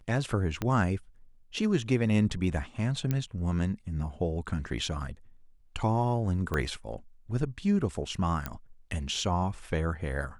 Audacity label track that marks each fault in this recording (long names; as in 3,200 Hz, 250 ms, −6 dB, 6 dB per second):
0.620000	0.620000	click −16 dBFS
3.110000	3.110000	click −16 dBFS
6.540000	6.540000	click −17 dBFS
8.460000	8.460000	click −17 dBFS